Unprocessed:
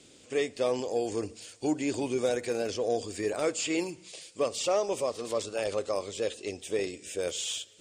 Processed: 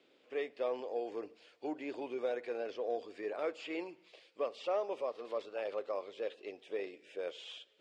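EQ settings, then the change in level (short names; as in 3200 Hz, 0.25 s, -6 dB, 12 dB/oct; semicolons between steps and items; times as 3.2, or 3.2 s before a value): HPF 430 Hz 12 dB/oct; air absorption 360 m; -4.5 dB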